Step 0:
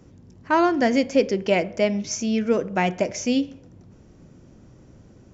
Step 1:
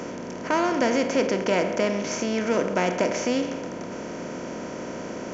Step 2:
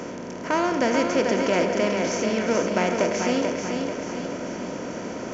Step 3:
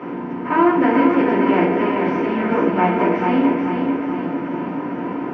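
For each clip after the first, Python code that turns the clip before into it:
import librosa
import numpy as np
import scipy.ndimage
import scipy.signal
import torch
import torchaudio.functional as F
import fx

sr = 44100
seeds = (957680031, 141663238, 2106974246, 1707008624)

y1 = fx.bin_compress(x, sr, power=0.4)
y1 = F.gain(torch.from_numpy(y1), -7.0).numpy()
y2 = fx.echo_feedback(y1, sr, ms=438, feedback_pct=51, wet_db=-5.0)
y3 = fx.cabinet(y2, sr, low_hz=130.0, low_slope=12, high_hz=2600.0, hz=(300.0, 540.0, 1000.0), db=(7, -6, 6))
y3 = fx.room_shoebox(y3, sr, seeds[0], volume_m3=220.0, walls='furnished', distance_m=4.2)
y3 = F.gain(torch.from_numpy(y3), -4.5).numpy()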